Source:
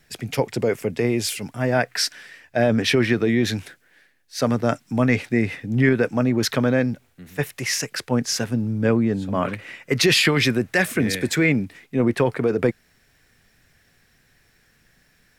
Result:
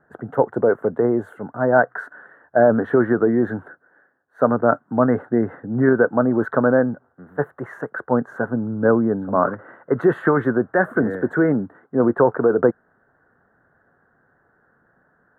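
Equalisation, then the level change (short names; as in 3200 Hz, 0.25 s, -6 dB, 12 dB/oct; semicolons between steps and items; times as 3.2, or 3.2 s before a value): HPF 440 Hz 6 dB/oct; elliptic low-pass 1500 Hz, stop band 40 dB; +8.0 dB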